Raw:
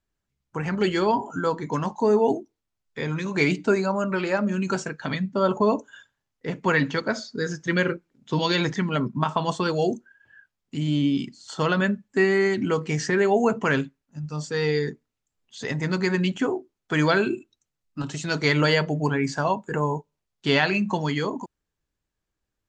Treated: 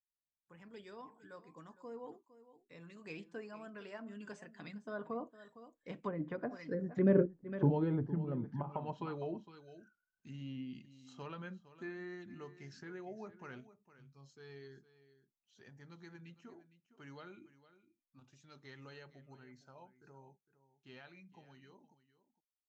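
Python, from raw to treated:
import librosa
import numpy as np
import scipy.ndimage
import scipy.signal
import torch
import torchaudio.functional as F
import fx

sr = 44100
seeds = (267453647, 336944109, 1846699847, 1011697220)

y = fx.doppler_pass(x, sr, speed_mps=31, closest_m=5.1, pass_at_s=7.32)
y = y + 10.0 ** (-15.5 / 20.0) * np.pad(y, (int(459 * sr / 1000.0), 0))[:len(y)]
y = fx.env_lowpass_down(y, sr, base_hz=520.0, full_db=-35.5)
y = y * 10.0 ** (3.0 / 20.0)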